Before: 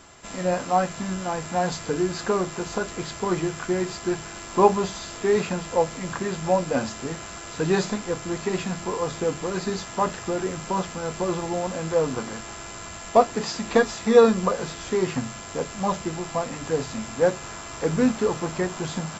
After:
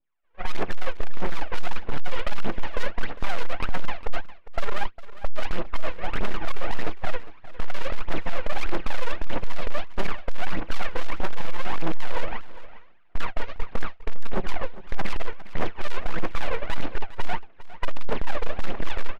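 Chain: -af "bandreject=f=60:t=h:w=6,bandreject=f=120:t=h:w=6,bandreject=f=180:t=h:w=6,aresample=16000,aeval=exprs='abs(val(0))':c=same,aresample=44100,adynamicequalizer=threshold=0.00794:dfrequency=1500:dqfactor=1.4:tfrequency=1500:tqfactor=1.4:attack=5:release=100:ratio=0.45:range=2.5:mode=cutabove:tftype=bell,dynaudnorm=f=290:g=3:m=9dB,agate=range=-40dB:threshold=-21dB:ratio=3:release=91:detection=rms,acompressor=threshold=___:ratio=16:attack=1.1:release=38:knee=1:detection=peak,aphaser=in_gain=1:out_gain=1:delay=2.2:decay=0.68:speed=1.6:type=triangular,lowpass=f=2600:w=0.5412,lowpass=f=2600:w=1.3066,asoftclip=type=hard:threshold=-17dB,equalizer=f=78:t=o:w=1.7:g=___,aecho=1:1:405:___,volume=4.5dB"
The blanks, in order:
-19dB, -10.5, 0.158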